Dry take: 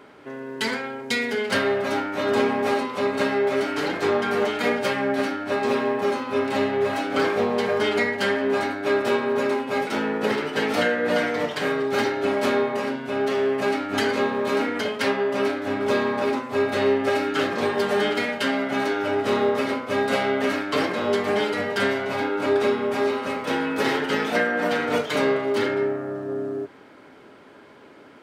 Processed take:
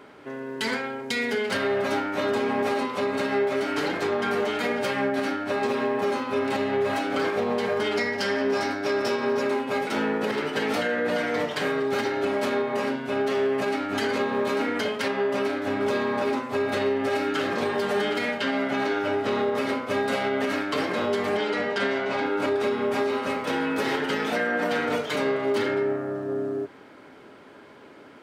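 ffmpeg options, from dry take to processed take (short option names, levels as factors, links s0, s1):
-filter_complex "[0:a]asettb=1/sr,asplit=3[s0][s1][s2];[s0]atrim=end=7.964[s3];[s1]atrim=start=7.96:end=9.42,asetpts=PTS-STARTPTS,afade=t=in:d=0.004:c=qsin,afade=t=out:st=1.456:d=0.004:c=qsin,equalizer=f=5300:w=4.4:g=14[s4];[s2]atrim=start=9.416[s5];[s3][s4]acrossfade=d=0.004:c1=hsin:c2=qsin[s6];[s6][s5]acrossfade=d=0.004:c1=qsin:c2=hsin,asettb=1/sr,asplit=3[s7][s8][s9];[s7]atrim=end=18.384[s10];[s8]atrim=start=18.38:end=19.55,asetpts=PTS-STARTPTS,afade=t=in:d=0.004:c=qsin,afade=t=out:st=1.166:d=0.004:c=qsin,acrossover=split=6100[s11][s12];[s12]acompressor=threshold=0.00158:ratio=4:attack=1:release=60[s13];[s11][s13]amix=inputs=2:normalize=0[s14];[s9]atrim=start=19.546[s15];[s10][s14]acrossfade=d=0.004:c1=hsin:c2=qsin[s16];[s16][s15]acrossfade=d=0.004:c1=qsin:c2=hsin,asettb=1/sr,asplit=3[s17][s18][s19];[s17]atrim=end=21.374[s20];[s18]atrim=start=21.37:end=22.26,asetpts=PTS-STARTPTS,afade=t=in:d=0.004:c=qsin,afade=t=out:st=0.886:d=0.004:c=qsin,highpass=160,lowpass=6200[s21];[s19]atrim=start=22.256[s22];[s20][s21]acrossfade=d=0.004:c1=hsin:c2=qsin[s23];[s23][s22]acrossfade=d=0.004:c1=qsin:c2=hsin,alimiter=limit=0.15:level=0:latency=1:release=84"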